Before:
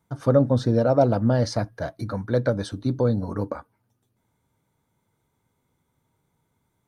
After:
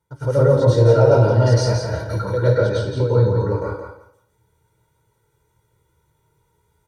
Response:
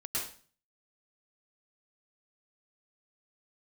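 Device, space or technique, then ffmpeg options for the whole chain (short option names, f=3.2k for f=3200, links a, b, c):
microphone above a desk: -filter_complex "[0:a]asettb=1/sr,asplit=3[a][b][c];[a]atrim=end=2.384[d];[b]atrim=start=2.38:end=3.48,asetpts=PTS-STARTPTS,afade=t=in:d=0.004:c=qsin,afade=t=out:st=1.096:d=0.004:c=qsin,lowpass=5.2k[e];[c]atrim=start=3.476[f];[d][e]acrossfade=d=0.004:c1=hsin:c2=qsin[g];[g][f]acrossfade=d=0.004:c1=qsin:c2=hsin,aecho=1:1:2.1:0.84,aecho=1:1:171|342|513:0.501|0.1|0.02[h];[1:a]atrim=start_sample=2205[i];[h][i]afir=irnorm=-1:irlink=0"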